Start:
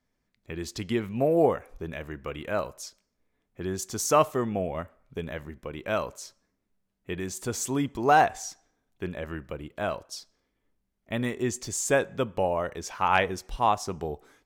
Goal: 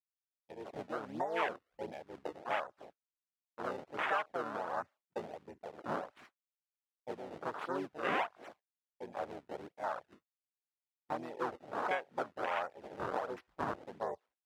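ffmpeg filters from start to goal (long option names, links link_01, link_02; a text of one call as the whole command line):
ffmpeg -i in.wav -filter_complex "[0:a]acrusher=samples=31:mix=1:aa=0.000001:lfo=1:lforange=49.6:lforate=1.4,tremolo=f=2.7:d=0.62,aemphasis=mode=reproduction:type=riaa,asplit=2[link_01][link_02];[link_02]asetrate=58866,aresample=44100,atempo=0.749154,volume=-4dB[link_03];[link_01][link_03]amix=inputs=2:normalize=0,afwtdn=0.02,highpass=1100,agate=range=-33dB:threshold=-58dB:ratio=3:detection=peak,acompressor=threshold=-42dB:ratio=3,volume=7.5dB" out.wav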